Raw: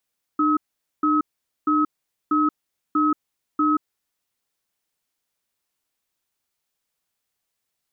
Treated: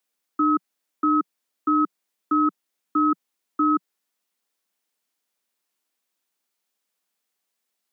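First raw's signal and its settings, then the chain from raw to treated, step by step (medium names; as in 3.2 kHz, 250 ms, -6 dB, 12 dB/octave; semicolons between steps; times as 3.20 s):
cadence 302 Hz, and 1.28 kHz, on 0.18 s, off 0.46 s, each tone -19 dBFS 3.66 s
steep high-pass 180 Hz 48 dB/octave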